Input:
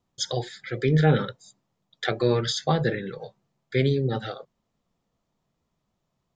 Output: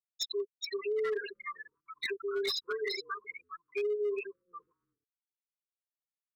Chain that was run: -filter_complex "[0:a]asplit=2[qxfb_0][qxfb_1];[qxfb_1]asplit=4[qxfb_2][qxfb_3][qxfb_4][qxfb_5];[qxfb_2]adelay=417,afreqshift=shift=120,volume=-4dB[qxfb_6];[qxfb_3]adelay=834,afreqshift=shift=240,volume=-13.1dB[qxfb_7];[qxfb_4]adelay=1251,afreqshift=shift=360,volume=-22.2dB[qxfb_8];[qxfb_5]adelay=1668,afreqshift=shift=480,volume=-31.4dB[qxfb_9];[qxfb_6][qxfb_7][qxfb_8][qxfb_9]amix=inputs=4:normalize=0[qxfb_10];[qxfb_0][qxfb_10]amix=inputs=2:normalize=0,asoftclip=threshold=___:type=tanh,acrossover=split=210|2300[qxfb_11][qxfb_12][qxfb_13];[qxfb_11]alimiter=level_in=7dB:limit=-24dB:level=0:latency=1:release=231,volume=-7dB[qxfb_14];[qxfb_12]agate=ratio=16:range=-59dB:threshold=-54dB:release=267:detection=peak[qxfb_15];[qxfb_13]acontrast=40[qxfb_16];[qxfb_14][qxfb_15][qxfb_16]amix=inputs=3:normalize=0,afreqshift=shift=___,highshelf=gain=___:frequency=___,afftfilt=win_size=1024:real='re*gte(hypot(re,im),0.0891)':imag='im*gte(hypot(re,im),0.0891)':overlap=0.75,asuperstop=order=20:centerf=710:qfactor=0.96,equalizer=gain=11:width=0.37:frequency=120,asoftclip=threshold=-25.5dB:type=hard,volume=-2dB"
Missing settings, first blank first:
-20dB, 280, -8.5, 5.1k